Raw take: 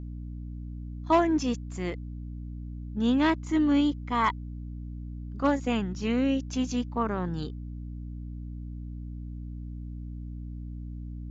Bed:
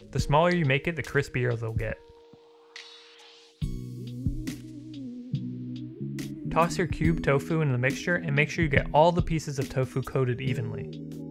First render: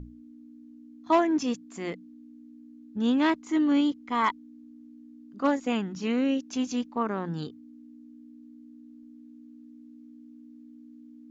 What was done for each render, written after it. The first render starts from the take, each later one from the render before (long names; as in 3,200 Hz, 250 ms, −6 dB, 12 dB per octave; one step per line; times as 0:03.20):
mains-hum notches 60/120/180 Hz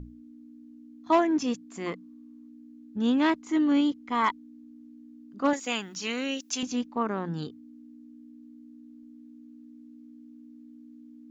0:01.86–0:02.49: parametric band 1,100 Hz +14 dB 0.45 octaves
0:05.53–0:06.63: spectral tilt +4 dB per octave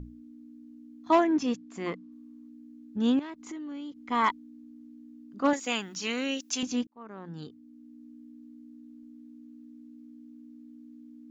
0:01.24–0:02.12: high-frequency loss of the air 62 metres
0:03.19–0:04.03: downward compressor 16 to 1, threshold −36 dBFS
0:06.87–0:08.07: fade in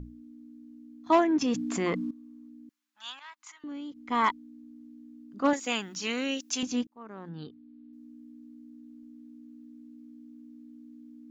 0:01.41–0:02.11: envelope flattener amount 70%
0:02.69–0:03.64: inverse Chebyshev high-pass filter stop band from 470 Hz
0:07.29–0:07.93: Butterworth low-pass 4,500 Hz 48 dB per octave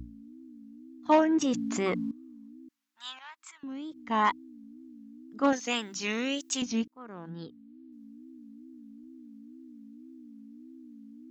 tape wow and flutter 140 cents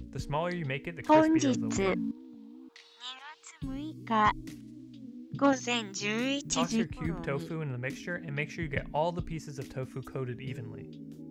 mix in bed −10 dB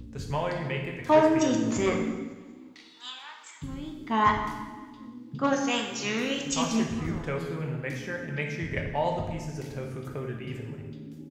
repeating echo 186 ms, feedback 57%, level −21 dB
dense smooth reverb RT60 1.2 s, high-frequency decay 0.8×, DRR 1 dB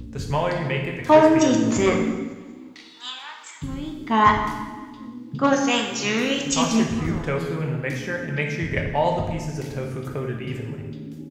level +6.5 dB
brickwall limiter −3 dBFS, peak gain reduction 2 dB